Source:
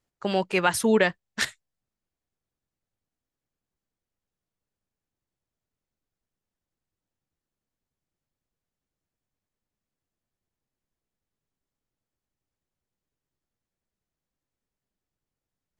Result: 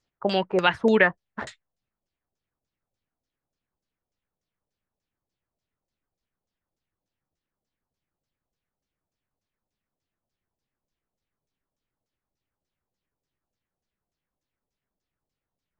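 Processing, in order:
auto-filter low-pass saw down 3.4 Hz 540–6,700 Hz

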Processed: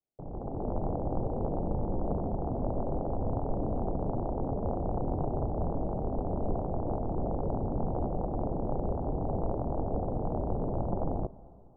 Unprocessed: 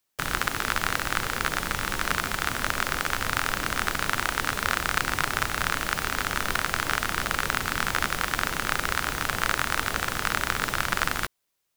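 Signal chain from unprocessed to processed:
Butterworth low-pass 780 Hz 48 dB per octave
automatic gain control gain up to 11 dB
on a send: convolution reverb RT60 2.9 s, pre-delay 83 ms, DRR 19.5 dB
on the sum: level −7 dB

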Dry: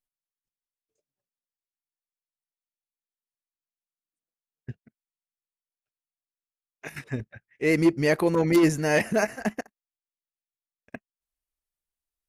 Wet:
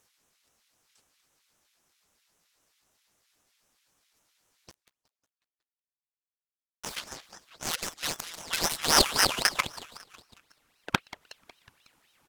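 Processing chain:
compressor on every frequency bin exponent 0.6
0:07.69–0:09.58: guitar amp tone stack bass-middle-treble 10-0-10
in parallel at −11 dB: sine wavefolder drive 15 dB, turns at −9 dBFS
on the sum: high-pass filter sweep 3,200 Hz → 270 Hz, 0:08.35–0:12.07
harmonic generator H 3 −11 dB, 8 −36 dB, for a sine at −7.5 dBFS
0:04.70–0:06.95: bit-depth reduction 8 bits, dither none
on a send: echo with shifted repeats 183 ms, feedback 59%, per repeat +52 Hz, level −18 dB
on the sum: ring modulator whose carrier an LFO sweeps 2,000 Hz, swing 75%, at 3.8 Hz
level +4 dB

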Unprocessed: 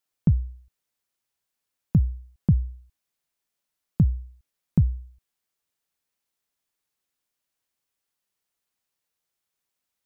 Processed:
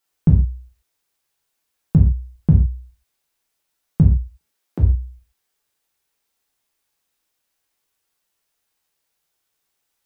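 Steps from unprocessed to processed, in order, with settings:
0:04.22–0:04.79: high-pass filter 140 Hz → 280 Hz 24 dB per octave
reverb whose tail is shaped and stops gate 160 ms falling, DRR −1.5 dB
level +4.5 dB

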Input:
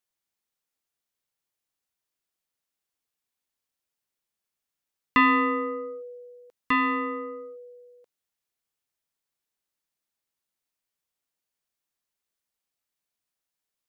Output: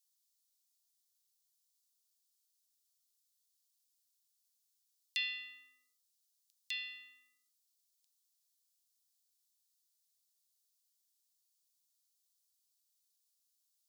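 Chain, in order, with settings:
inverse Chebyshev high-pass filter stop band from 1,200 Hz, stop band 60 dB
level +7 dB

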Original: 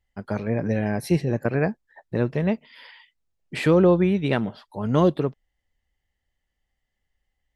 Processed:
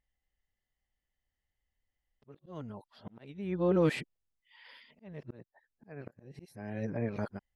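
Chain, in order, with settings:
played backwards from end to start
volume swells 680 ms
level −8.5 dB

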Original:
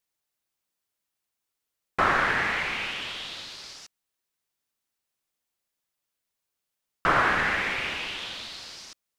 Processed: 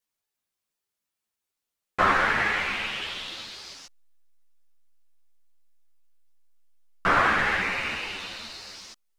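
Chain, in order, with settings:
0:07.60–0:08.75: notch filter 3,300 Hz, Q 5.9
in parallel at −9 dB: slack as between gear wheels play −40 dBFS
on the sum: string-ensemble chorus
level +1.5 dB

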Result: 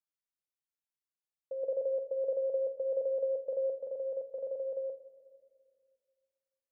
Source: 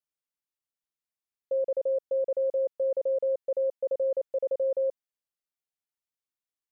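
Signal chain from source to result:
0:01.63–0:03.70: parametric band 430 Hz +5 dB 2.2 octaves
mains-hum notches 60/120/180/240/300/360/420/480/540 Hz
rectangular room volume 3,600 cubic metres, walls mixed, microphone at 0.65 metres
level −8 dB

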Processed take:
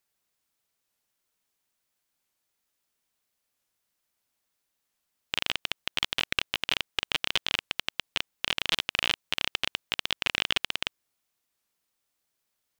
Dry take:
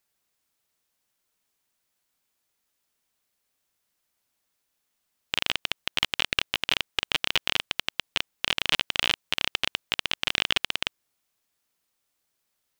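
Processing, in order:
wow of a warped record 45 rpm, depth 160 cents
level −2.5 dB

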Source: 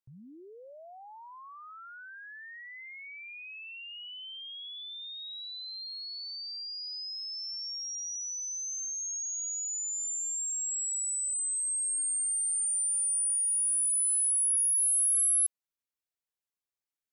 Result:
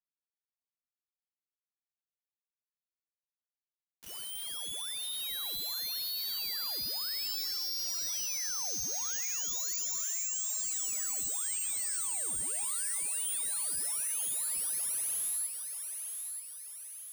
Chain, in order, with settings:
downward compressor 8 to 1, threshold −42 dBFS, peak gain reduction 16.5 dB
bit reduction 7 bits
on a send: feedback echo with a high-pass in the loop 933 ms, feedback 52%, high-pass 770 Hz, level −6.5 dB
on the sum: level +4 dB

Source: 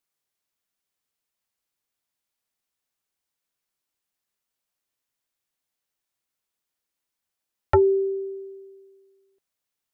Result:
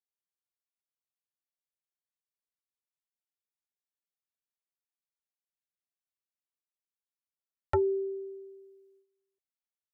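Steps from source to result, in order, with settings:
noise gate −57 dBFS, range −11 dB
level −9 dB

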